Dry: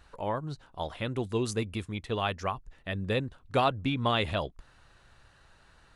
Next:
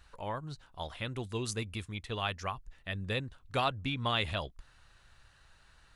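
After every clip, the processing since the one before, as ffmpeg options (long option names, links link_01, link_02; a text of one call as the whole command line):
ffmpeg -i in.wav -af "equalizer=frequency=360:width=0.36:gain=-8" out.wav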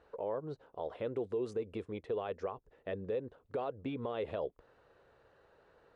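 ffmpeg -i in.wav -af "acompressor=threshold=-35dB:ratio=2,bandpass=frequency=460:width_type=q:width=4:csg=0,alimiter=level_in=20dB:limit=-24dB:level=0:latency=1:release=93,volume=-20dB,volume=16.5dB" out.wav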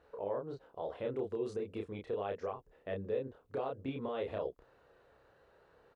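ffmpeg -i in.wav -filter_complex "[0:a]asplit=2[link_01][link_02];[link_02]adelay=30,volume=-2.5dB[link_03];[link_01][link_03]amix=inputs=2:normalize=0,volume=-2dB" out.wav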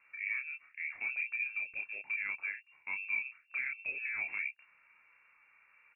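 ffmpeg -i in.wav -af "lowpass=frequency=2400:width_type=q:width=0.5098,lowpass=frequency=2400:width_type=q:width=0.6013,lowpass=frequency=2400:width_type=q:width=0.9,lowpass=frequency=2400:width_type=q:width=2.563,afreqshift=-2800" out.wav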